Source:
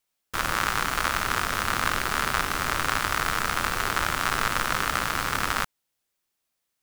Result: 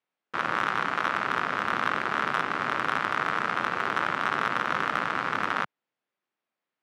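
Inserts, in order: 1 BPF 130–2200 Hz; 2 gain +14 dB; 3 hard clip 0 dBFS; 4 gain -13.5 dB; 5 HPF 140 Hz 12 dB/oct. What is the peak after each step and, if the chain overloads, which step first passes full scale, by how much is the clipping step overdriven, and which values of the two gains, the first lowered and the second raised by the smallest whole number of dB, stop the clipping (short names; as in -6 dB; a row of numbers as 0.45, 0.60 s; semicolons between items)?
-10.0, +4.0, 0.0, -13.5, -12.0 dBFS; step 2, 4.0 dB; step 2 +10 dB, step 4 -9.5 dB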